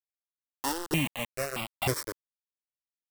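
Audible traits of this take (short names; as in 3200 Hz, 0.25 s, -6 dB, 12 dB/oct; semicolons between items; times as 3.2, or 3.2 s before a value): a buzz of ramps at a fixed pitch in blocks of 16 samples; chopped level 1.1 Hz, depth 60%, duty 25%; a quantiser's noise floor 6-bit, dither none; notches that jump at a steady rate 3.2 Hz 530–1700 Hz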